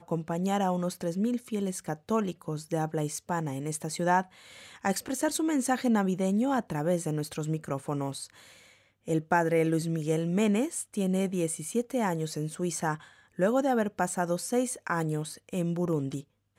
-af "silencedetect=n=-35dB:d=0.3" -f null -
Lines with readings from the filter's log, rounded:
silence_start: 4.22
silence_end: 4.85 | silence_duration: 0.62
silence_start: 8.25
silence_end: 9.08 | silence_duration: 0.83
silence_start: 12.95
silence_end: 13.39 | silence_duration: 0.44
silence_start: 16.20
silence_end: 16.58 | silence_duration: 0.38